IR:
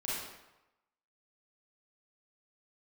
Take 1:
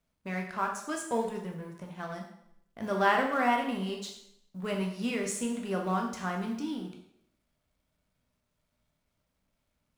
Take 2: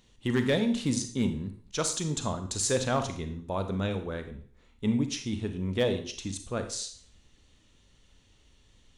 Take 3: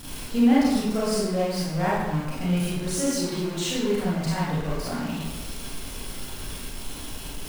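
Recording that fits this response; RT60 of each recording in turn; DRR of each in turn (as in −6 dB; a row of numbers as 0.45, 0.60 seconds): 3; 0.70, 0.50, 0.95 seconds; 1.0, 7.5, −8.5 decibels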